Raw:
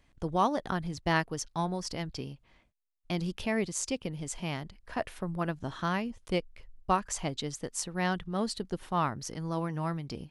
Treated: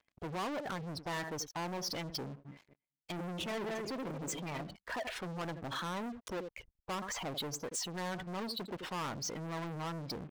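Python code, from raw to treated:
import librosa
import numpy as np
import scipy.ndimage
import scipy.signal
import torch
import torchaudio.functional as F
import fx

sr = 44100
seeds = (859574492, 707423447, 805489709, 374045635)

y = fx.reverse_delay_fb(x, sr, ms=112, feedback_pct=52, wet_db=-7, at=(2.29, 4.62))
y = fx.high_shelf(y, sr, hz=2800.0, db=3.5)
y = fx.env_lowpass_down(y, sr, base_hz=2400.0, full_db=-26.5)
y = 10.0 ** (-28.5 / 20.0) * np.tanh(y / 10.0 ** (-28.5 / 20.0))
y = fx.cheby_harmonics(y, sr, harmonics=(4,), levels_db=(-10,), full_scale_db=-12.0)
y = fx.highpass(y, sr, hz=75.0, slope=6)
y = y + 10.0 ** (-16.5 / 20.0) * np.pad(y, (int(84 * sr / 1000.0), 0))[:len(y)]
y = fx.spec_gate(y, sr, threshold_db=-15, keep='strong')
y = fx.leveller(y, sr, passes=5)
y = fx.low_shelf(y, sr, hz=220.0, db=-10.5)
y = y * 10.0 ** (-8.5 / 20.0)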